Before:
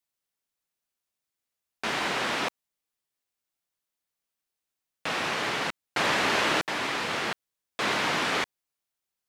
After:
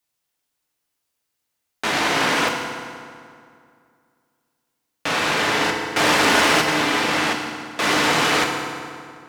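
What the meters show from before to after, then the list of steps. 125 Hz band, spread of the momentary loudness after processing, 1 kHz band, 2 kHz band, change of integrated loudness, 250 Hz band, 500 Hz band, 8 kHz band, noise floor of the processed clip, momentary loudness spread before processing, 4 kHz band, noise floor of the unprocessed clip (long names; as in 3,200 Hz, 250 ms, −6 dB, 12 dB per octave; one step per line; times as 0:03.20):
+9.5 dB, 15 LU, +9.0 dB, +8.5 dB, +8.5 dB, +11.0 dB, +9.0 dB, +11.5 dB, −78 dBFS, 10 LU, +8.5 dB, below −85 dBFS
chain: phase distortion by the signal itself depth 0.11 ms
feedback delay network reverb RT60 2.3 s, low-frequency decay 1.1×, high-frequency decay 0.7×, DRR 1 dB
level +7 dB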